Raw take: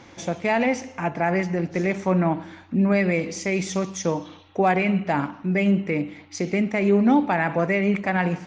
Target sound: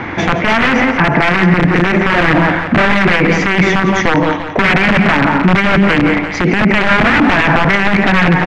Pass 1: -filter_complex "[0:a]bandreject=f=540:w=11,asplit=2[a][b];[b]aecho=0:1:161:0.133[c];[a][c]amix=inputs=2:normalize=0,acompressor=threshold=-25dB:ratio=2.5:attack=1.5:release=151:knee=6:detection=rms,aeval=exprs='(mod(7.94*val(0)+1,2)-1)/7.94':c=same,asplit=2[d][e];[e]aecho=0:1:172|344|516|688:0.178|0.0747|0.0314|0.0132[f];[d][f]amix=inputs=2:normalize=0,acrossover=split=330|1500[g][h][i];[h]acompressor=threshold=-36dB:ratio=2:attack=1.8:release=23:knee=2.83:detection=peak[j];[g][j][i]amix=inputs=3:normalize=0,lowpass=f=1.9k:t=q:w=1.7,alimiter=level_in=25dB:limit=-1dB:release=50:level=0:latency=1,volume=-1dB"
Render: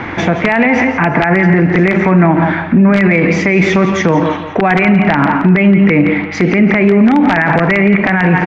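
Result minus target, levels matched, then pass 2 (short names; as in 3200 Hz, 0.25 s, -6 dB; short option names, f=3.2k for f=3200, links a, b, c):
compressor: peak gain reduction +6 dB
-filter_complex "[0:a]bandreject=f=540:w=11,asplit=2[a][b];[b]aecho=0:1:161:0.133[c];[a][c]amix=inputs=2:normalize=0,acompressor=threshold=-15dB:ratio=2.5:attack=1.5:release=151:knee=6:detection=rms,aeval=exprs='(mod(7.94*val(0)+1,2)-1)/7.94':c=same,asplit=2[d][e];[e]aecho=0:1:172|344|516|688:0.178|0.0747|0.0314|0.0132[f];[d][f]amix=inputs=2:normalize=0,acrossover=split=330|1500[g][h][i];[h]acompressor=threshold=-36dB:ratio=2:attack=1.8:release=23:knee=2.83:detection=peak[j];[g][j][i]amix=inputs=3:normalize=0,lowpass=f=1.9k:t=q:w=1.7,alimiter=level_in=25dB:limit=-1dB:release=50:level=0:latency=1,volume=-1dB"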